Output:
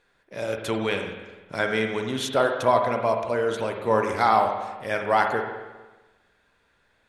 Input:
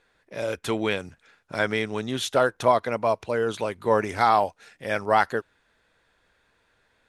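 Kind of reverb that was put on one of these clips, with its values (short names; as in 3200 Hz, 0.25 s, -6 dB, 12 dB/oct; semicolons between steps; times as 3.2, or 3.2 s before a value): spring tank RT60 1.2 s, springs 45/50 ms, chirp 50 ms, DRR 3.5 dB; gain -1 dB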